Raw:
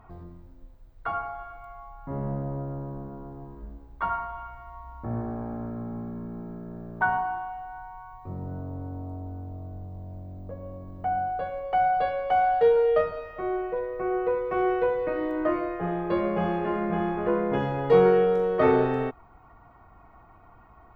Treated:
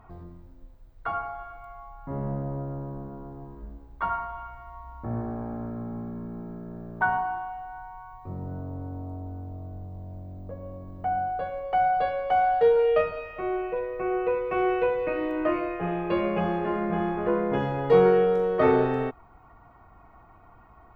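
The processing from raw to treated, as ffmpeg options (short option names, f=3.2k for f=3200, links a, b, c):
-filter_complex "[0:a]asettb=1/sr,asplit=3[a][b][c];[a]atrim=end=12.794[d];[b]atrim=start=12.79:end=16.4,asetpts=PTS-STARTPTS,afade=t=in:d=0.004:c=qsin,afade=t=out:st=3.606:d=0.004:c=qsin,equalizer=f=2.6k:t=o:w=0.28:g=13[e];[c]atrim=start=16.396[f];[d][e]acrossfade=d=0.004:c1=hsin:c2=qsin[g];[g][f]acrossfade=d=0.004:c1=qsin:c2=hsin"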